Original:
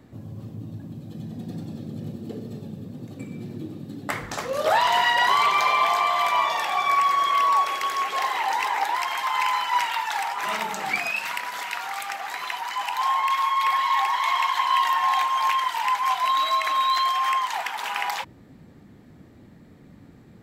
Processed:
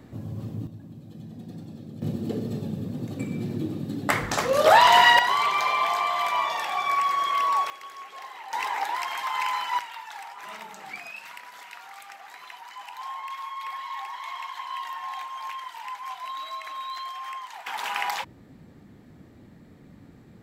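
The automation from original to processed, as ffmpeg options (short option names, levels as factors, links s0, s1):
-af "asetnsamples=n=441:p=0,asendcmd='0.67 volume volume -6dB;2.02 volume volume 5dB;5.19 volume volume -3.5dB;7.7 volume volume -16dB;8.53 volume volume -4dB;9.79 volume volume -13dB;17.67 volume volume -1dB',volume=1.41"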